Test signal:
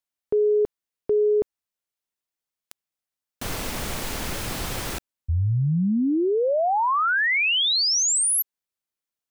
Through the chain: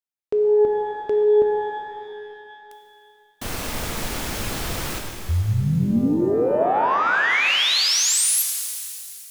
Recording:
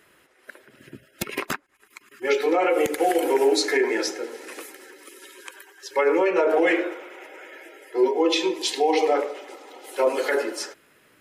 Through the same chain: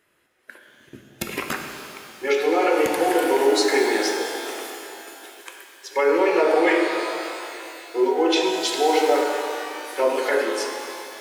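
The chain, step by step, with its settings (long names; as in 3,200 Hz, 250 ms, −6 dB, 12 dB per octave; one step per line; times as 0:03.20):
noise gate −45 dBFS, range −9 dB
reverb with rising layers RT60 2.6 s, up +12 semitones, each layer −8 dB, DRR 2.5 dB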